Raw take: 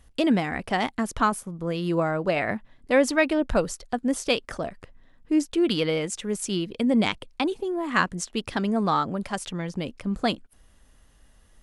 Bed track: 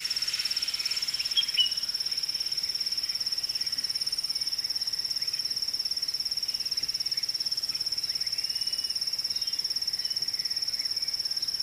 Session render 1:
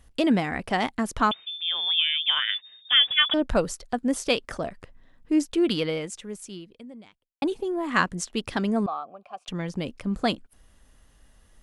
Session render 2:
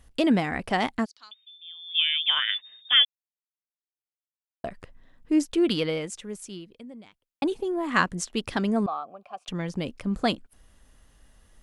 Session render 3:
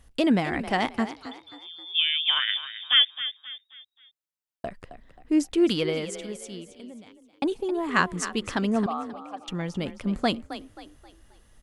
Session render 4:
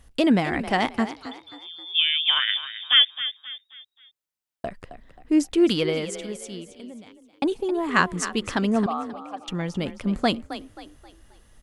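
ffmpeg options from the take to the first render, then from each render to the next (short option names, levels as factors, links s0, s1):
-filter_complex "[0:a]asettb=1/sr,asplit=3[s0][s1][s2];[s0]atrim=end=1.314[s3];[s1]atrim=start=1.31:end=3.34,asetpts=PTS-STARTPTS,afade=t=in:d=0.004:c=qsin,afade=t=out:st=2.026:d=0.004:c=qsin,lowpass=f=3100:t=q:w=0.5098,lowpass=f=3100:t=q:w=0.6013,lowpass=f=3100:t=q:w=0.9,lowpass=f=3100:t=q:w=2.563,afreqshift=-3700[s4];[s2]atrim=start=3.336[s5];[s3][s4]acrossfade=d=0.004:c1=hsin:c2=qsin[s6];[s6][s5]acrossfade=d=0.004:c1=qsin:c2=hsin,asettb=1/sr,asplit=3[s7][s8][s9];[s7]atrim=end=8.864[s10];[s8]atrim=start=8.86:end=9.48,asetpts=PTS-STARTPTS,afade=t=in:d=0.004:c=qsin,afade=t=out:st=0.616:d=0.004:c=qsin,asplit=3[s11][s12][s13];[s11]bandpass=f=730:t=q:w=8,volume=1[s14];[s12]bandpass=f=1090:t=q:w=8,volume=0.501[s15];[s13]bandpass=f=2440:t=q:w=8,volume=0.355[s16];[s14][s15][s16]amix=inputs=3:normalize=0[s17];[s9]atrim=start=9.476[s18];[s10][s17]acrossfade=d=0.004:c1=hsin:c2=qsin[s19];[s19][s18]acrossfade=d=0.004:c1=qsin:c2=hsin,asplit=2[s20][s21];[s20]atrim=end=7.42,asetpts=PTS-STARTPTS,afade=t=out:st=5.64:d=1.78:c=qua[s22];[s21]atrim=start=7.42,asetpts=PTS-STARTPTS,afade=t=in:d=0.004:c=hsin[s23];[s22][s23]concat=n=2:v=0:a=1"
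-filter_complex "[0:a]asplit=3[s0][s1][s2];[s0]afade=t=out:st=1.04:d=0.02[s3];[s1]bandpass=f=4600:t=q:w=8.9,afade=t=in:st=1.04:d=0.02,afade=t=out:st=1.94:d=0.02[s4];[s2]afade=t=in:st=1.94:d=0.02[s5];[s3][s4][s5]amix=inputs=3:normalize=0,asplit=3[s6][s7][s8];[s6]atrim=end=3.05,asetpts=PTS-STARTPTS,afade=t=out:st=3.046:d=0.004:c=hsin[s9];[s7]atrim=start=3.05:end=4.64,asetpts=PTS-STARTPTS,volume=0[s10];[s8]atrim=start=4.64,asetpts=PTS-STARTPTS,afade=t=in:d=0.004:c=hsin[s11];[s9][s10][s11]concat=n=3:v=0:a=1"
-filter_complex "[0:a]asplit=5[s0][s1][s2][s3][s4];[s1]adelay=266,afreqshift=33,volume=0.237[s5];[s2]adelay=532,afreqshift=66,volume=0.0902[s6];[s3]adelay=798,afreqshift=99,volume=0.0343[s7];[s4]adelay=1064,afreqshift=132,volume=0.013[s8];[s0][s5][s6][s7][s8]amix=inputs=5:normalize=0"
-af "volume=1.33"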